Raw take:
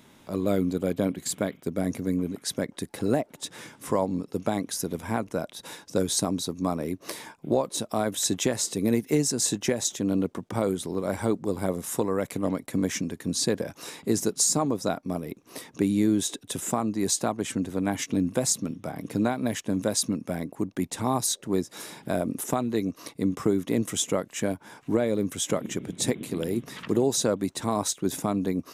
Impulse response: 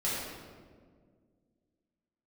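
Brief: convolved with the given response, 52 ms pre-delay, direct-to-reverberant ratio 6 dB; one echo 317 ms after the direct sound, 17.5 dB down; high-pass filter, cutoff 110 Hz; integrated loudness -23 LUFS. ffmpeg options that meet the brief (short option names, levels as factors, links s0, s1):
-filter_complex "[0:a]highpass=110,aecho=1:1:317:0.133,asplit=2[s0][s1];[1:a]atrim=start_sample=2205,adelay=52[s2];[s1][s2]afir=irnorm=-1:irlink=0,volume=0.211[s3];[s0][s3]amix=inputs=2:normalize=0,volume=1.5"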